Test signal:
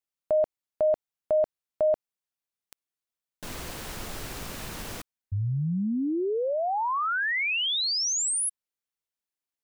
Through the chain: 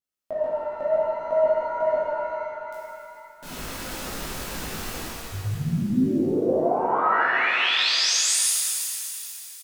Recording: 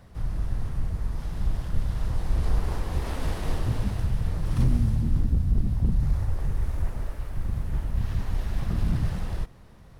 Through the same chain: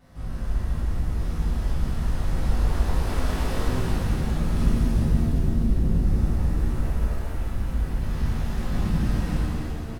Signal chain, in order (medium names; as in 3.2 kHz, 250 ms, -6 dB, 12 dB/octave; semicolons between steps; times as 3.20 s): peaking EQ 95 Hz -5.5 dB 1 oct; saturation -13.5 dBFS; vibrato 4.6 Hz 57 cents; doubling 19 ms -3.5 dB; pitch-shifted reverb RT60 2.9 s, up +7 st, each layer -8 dB, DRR -8 dB; trim -5.5 dB